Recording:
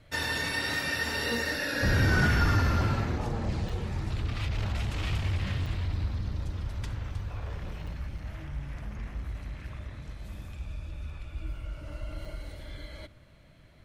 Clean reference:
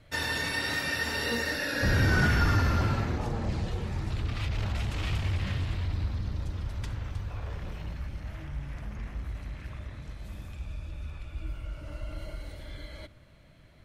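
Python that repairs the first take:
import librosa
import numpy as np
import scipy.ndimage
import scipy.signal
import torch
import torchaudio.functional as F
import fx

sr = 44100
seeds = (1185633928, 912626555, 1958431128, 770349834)

y = fx.fix_interpolate(x, sr, at_s=(3.69, 5.66, 7.87, 8.18, 12.25), length_ms=4.8)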